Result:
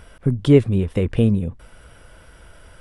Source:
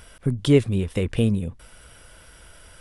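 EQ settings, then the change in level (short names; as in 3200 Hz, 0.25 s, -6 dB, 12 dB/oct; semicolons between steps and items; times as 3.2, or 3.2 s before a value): high shelf 2600 Hz -11 dB; +4.0 dB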